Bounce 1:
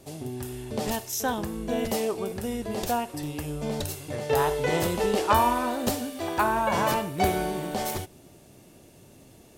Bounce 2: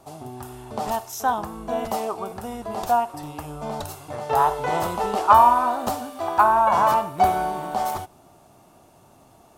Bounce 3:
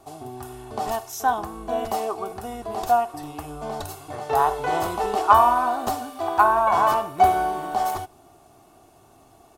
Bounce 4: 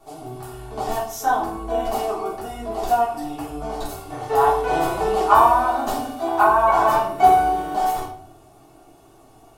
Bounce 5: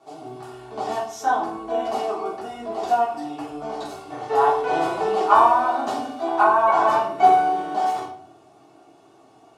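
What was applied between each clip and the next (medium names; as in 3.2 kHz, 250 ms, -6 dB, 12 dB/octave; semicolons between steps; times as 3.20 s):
high-order bell 960 Hz +12.5 dB 1.3 oct; trim -3.5 dB
comb 2.7 ms, depth 43%; trim -1 dB
simulated room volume 66 m³, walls mixed, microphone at 1.5 m; trim -5 dB
band-pass 180–6200 Hz; trim -1 dB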